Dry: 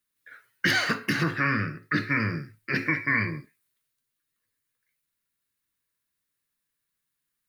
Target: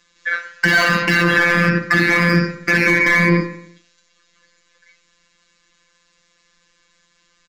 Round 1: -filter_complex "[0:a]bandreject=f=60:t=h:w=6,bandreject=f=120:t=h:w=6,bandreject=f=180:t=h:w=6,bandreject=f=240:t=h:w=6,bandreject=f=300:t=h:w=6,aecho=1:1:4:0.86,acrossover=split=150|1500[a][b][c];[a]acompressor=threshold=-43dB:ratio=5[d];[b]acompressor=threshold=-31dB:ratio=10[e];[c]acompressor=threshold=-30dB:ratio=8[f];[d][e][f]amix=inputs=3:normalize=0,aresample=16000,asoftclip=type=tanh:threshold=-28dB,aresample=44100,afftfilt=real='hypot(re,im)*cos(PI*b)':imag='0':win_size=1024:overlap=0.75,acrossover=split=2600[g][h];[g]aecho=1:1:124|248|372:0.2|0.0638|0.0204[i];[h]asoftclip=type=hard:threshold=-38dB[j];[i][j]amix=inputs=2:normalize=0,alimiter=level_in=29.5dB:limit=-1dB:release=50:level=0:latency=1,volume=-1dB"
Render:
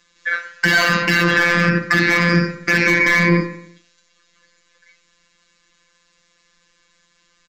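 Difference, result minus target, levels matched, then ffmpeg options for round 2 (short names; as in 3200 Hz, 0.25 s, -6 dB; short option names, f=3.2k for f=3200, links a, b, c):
hard clip: distortion -6 dB
-filter_complex "[0:a]bandreject=f=60:t=h:w=6,bandreject=f=120:t=h:w=6,bandreject=f=180:t=h:w=6,bandreject=f=240:t=h:w=6,bandreject=f=300:t=h:w=6,aecho=1:1:4:0.86,acrossover=split=150|1500[a][b][c];[a]acompressor=threshold=-43dB:ratio=5[d];[b]acompressor=threshold=-31dB:ratio=10[e];[c]acompressor=threshold=-30dB:ratio=8[f];[d][e][f]amix=inputs=3:normalize=0,aresample=16000,asoftclip=type=tanh:threshold=-28dB,aresample=44100,afftfilt=real='hypot(re,im)*cos(PI*b)':imag='0':win_size=1024:overlap=0.75,acrossover=split=2600[g][h];[g]aecho=1:1:124|248|372:0.2|0.0638|0.0204[i];[h]asoftclip=type=hard:threshold=-46.5dB[j];[i][j]amix=inputs=2:normalize=0,alimiter=level_in=29.5dB:limit=-1dB:release=50:level=0:latency=1,volume=-1dB"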